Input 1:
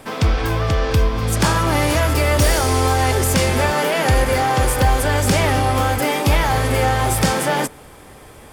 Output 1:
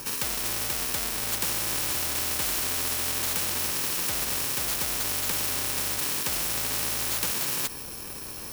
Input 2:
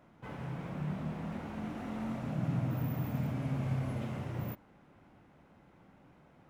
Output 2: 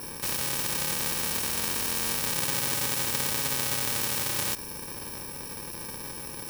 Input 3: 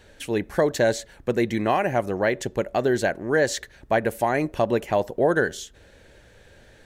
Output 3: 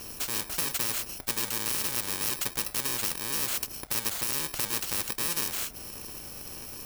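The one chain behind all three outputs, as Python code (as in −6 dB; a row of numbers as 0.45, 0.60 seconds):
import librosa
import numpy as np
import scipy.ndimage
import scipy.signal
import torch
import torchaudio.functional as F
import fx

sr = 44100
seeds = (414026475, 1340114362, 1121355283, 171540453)

y = fx.bit_reversed(x, sr, seeds[0], block=64)
y = fx.spectral_comp(y, sr, ratio=4.0)
y = librosa.util.normalize(y) * 10.0 ** (-12 / 20.0)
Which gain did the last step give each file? −5.5, +11.0, −3.5 decibels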